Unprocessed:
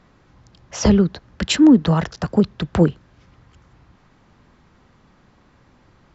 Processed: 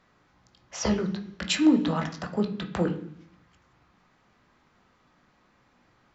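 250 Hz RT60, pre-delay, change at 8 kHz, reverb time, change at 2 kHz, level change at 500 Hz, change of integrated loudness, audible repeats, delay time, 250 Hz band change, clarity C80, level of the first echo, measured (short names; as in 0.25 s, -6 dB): 0.90 s, 17 ms, n/a, 0.70 s, -5.0 dB, -9.0 dB, -9.5 dB, none, none, -9.5 dB, 14.0 dB, none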